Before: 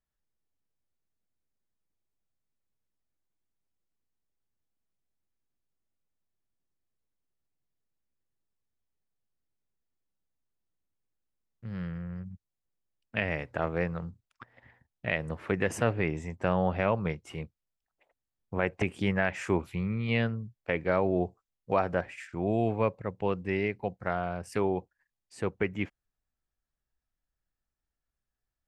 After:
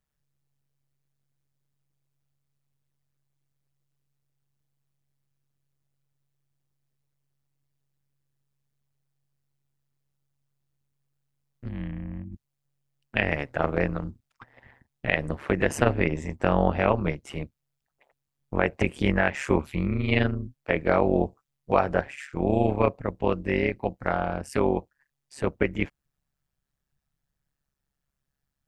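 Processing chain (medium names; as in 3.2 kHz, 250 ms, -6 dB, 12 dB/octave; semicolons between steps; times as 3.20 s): 11.69–12.33 s: static phaser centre 1.4 kHz, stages 6; AM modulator 140 Hz, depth 75%; trim +8.5 dB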